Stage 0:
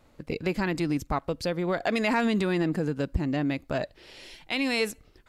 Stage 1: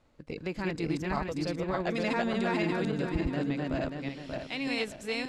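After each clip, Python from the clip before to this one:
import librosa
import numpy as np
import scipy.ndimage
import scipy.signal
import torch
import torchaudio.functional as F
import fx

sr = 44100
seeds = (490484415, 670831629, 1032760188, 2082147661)

y = fx.reverse_delay_fb(x, sr, ms=292, feedback_pct=55, wet_db=0.0)
y = scipy.signal.sosfilt(scipy.signal.butter(2, 8100.0, 'lowpass', fs=sr, output='sos'), y)
y = y * 10.0 ** (-7.0 / 20.0)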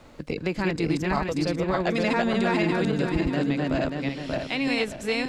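y = fx.band_squash(x, sr, depth_pct=40)
y = y * 10.0 ** (6.0 / 20.0)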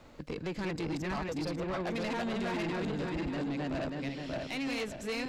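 y = fx.peak_eq(x, sr, hz=9400.0, db=-8.0, octaves=0.22)
y = 10.0 ** (-25.5 / 20.0) * np.tanh(y / 10.0 ** (-25.5 / 20.0))
y = y * 10.0 ** (-5.0 / 20.0)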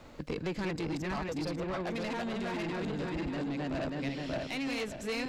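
y = fx.rider(x, sr, range_db=3, speed_s=0.5)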